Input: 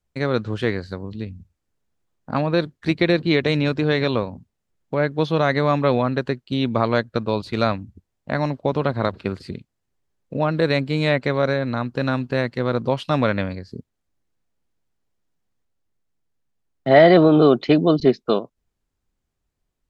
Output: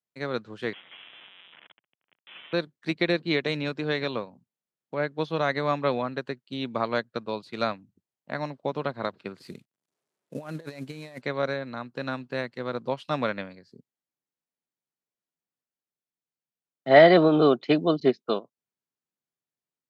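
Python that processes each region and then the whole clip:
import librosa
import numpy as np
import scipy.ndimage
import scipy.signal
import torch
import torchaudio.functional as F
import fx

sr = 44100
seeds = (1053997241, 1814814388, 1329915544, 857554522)

y = fx.chain(x, sr, fx.clip_1bit(),
    fx.highpass(hz=500.0, slope=12),
    fx.freq_invert(carrier_hz=3700), at=(0.73, 2.53))
y = fx.chain(y, sr, fx.cvsd(bps=64000),
    fx.over_compress(threshold_db=-24.0, ratio=-0.5), at=(9.38, 11.22))
y = scipy.signal.sosfilt(scipy.signal.butter(4, 130.0, 'highpass', fs=sr, output='sos'), y)
y = fx.low_shelf(y, sr, hz=470.0, db=-5.0)
y = fx.upward_expand(y, sr, threshold_db=-34.0, expansion=1.5)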